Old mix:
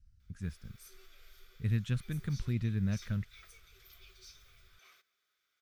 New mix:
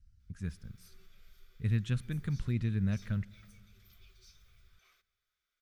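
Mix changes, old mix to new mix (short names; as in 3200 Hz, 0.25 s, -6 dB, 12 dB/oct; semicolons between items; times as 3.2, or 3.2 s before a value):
speech: send on; background -6.5 dB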